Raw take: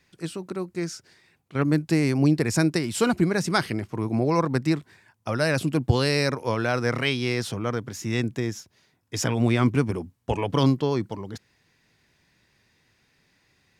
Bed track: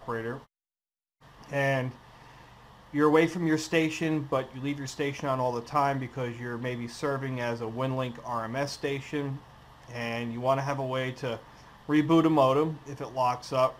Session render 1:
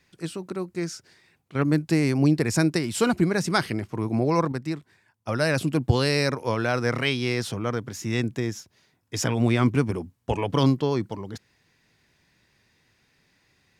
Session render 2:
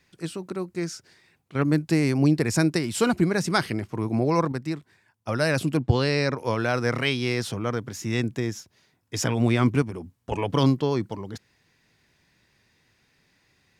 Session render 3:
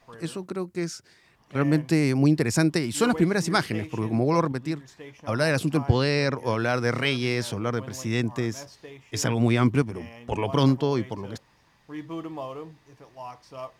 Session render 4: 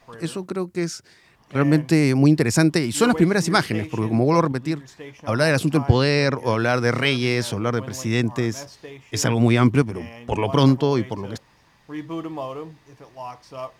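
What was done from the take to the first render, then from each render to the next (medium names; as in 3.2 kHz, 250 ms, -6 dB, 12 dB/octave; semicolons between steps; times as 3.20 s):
4.52–5.28 s: gain -6.5 dB
5.77–6.38 s: distance through air 84 m; 9.82–10.32 s: compression 2:1, threshold -34 dBFS
add bed track -13 dB
trim +4.5 dB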